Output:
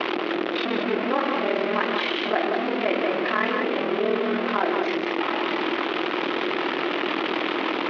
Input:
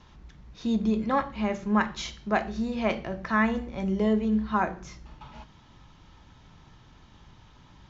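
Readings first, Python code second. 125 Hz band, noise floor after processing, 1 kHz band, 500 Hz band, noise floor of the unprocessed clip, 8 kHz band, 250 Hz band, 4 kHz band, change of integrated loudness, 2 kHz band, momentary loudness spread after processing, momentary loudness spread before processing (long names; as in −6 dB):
−7.0 dB, −28 dBFS, +6.0 dB, +9.0 dB, −55 dBFS, can't be measured, +1.0 dB, +14.0 dB, +3.0 dB, +8.5 dB, 2 LU, 18 LU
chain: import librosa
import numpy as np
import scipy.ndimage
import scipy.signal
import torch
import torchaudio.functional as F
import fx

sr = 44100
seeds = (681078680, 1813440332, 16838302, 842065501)

p1 = fx.delta_mod(x, sr, bps=32000, step_db=-21.0)
p2 = p1 * np.sin(2.0 * np.pi * 20.0 * np.arange(len(p1)) / sr)
p3 = fx.cabinet(p2, sr, low_hz=310.0, low_slope=24, high_hz=3000.0, hz=(340.0, 910.0, 1600.0), db=(10, -5, -3))
p4 = p3 + fx.echo_single(p3, sr, ms=183, db=-6.0, dry=0)
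p5 = fx.env_flatten(p4, sr, amount_pct=50)
y = F.gain(torch.from_numpy(p5), 3.5).numpy()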